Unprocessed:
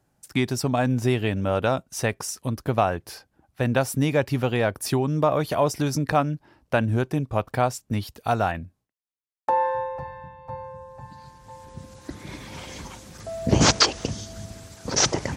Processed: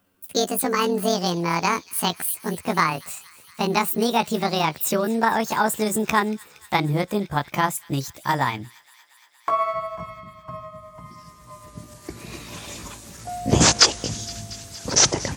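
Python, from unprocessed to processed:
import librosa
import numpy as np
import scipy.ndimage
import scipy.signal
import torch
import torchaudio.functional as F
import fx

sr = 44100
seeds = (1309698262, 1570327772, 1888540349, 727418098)

p1 = fx.pitch_glide(x, sr, semitones=10.5, runs='ending unshifted')
p2 = fx.high_shelf(p1, sr, hz=4700.0, db=7.0)
p3 = p2 + fx.echo_wet_highpass(p2, sr, ms=233, feedback_pct=79, hz=2400.0, wet_db=-19.5, dry=0)
y = p3 * 10.0 ** (1.5 / 20.0)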